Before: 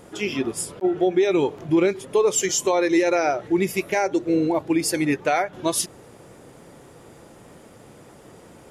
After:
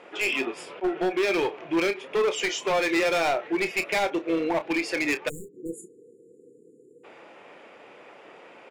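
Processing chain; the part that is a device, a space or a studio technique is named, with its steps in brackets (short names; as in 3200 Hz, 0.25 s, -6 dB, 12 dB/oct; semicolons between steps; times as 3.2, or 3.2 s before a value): megaphone (BPF 470–2900 Hz; bell 2500 Hz +9.5 dB 0.58 oct; hard clip -22.5 dBFS, distortion -8 dB; doubler 30 ms -11 dB); spectral delete 5.29–7.04, 500–6800 Hz; gain +1.5 dB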